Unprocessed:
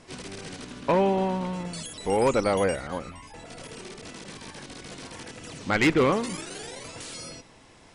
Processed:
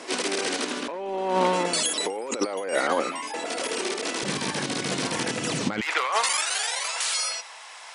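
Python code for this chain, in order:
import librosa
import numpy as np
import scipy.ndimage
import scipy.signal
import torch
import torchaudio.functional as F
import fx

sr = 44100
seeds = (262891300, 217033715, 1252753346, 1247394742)

y = fx.highpass(x, sr, hz=fx.steps((0.0, 290.0), (4.23, 130.0), (5.81, 780.0)), slope=24)
y = fx.over_compress(y, sr, threshold_db=-34.0, ratio=-1.0)
y = y * librosa.db_to_amplitude(8.5)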